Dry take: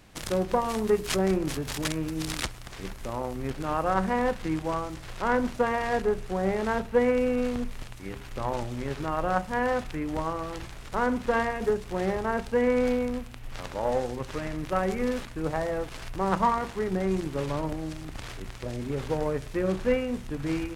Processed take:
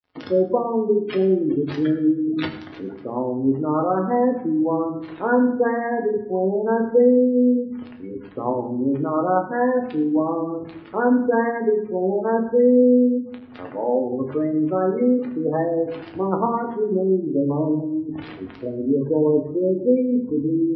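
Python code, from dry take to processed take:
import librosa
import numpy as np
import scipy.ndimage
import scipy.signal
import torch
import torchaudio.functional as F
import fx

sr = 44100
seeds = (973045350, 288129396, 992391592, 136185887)

p1 = scipy.ndimage.median_filter(x, 5, mode='constant')
p2 = scipy.signal.sosfilt(scipy.signal.butter(2, 140.0, 'highpass', fs=sr, output='sos'), p1)
p3 = fx.small_body(p2, sr, hz=(270.0, 380.0), ring_ms=20, db=6)
p4 = p3 + fx.echo_feedback(p3, sr, ms=194, feedback_pct=45, wet_db=-23.5, dry=0)
p5 = np.sign(p4) * np.maximum(np.abs(p4) - 10.0 ** (-47.5 / 20.0), 0.0)
p6 = fx.rider(p5, sr, range_db=3, speed_s=0.5)
p7 = p5 + (p6 * librosa.db_to_amplitude(0.0))
p8 = scipy.signal.sosfilt(scipy.signal.butter(2, 6700.0, 'lowpass', fs=sr, output='sos'), p7)
p9 = fx.spec_gate(p8, sr, threshold_db=-15, keep='strong')
p10 = fx.dynamic_eq(p9, sr, hz=1200.0, q=4.5, threshold_db=-40.0, ratio=4.0, max_db=-3)
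p11 = fx.rev_fdn(p10, sr, rt60_s=0.71, lf_ratio=1.6, hf_ratio=0.8, size_ms=65.0, drr_db=2.0)
y = p11 * librosa.db_to_amplitude(-3.5)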